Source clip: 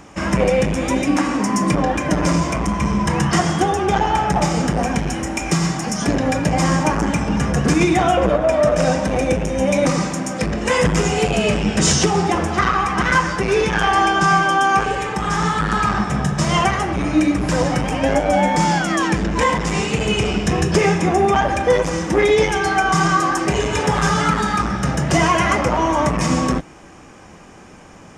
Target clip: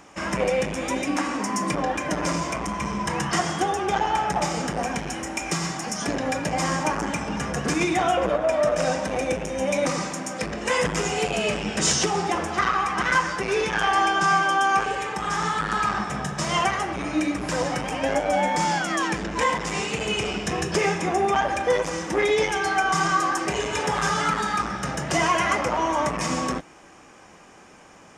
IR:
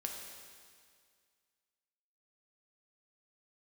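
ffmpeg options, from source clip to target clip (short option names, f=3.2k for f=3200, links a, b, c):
-af "lowshelf=f=250:g=-11,volume=-4dB"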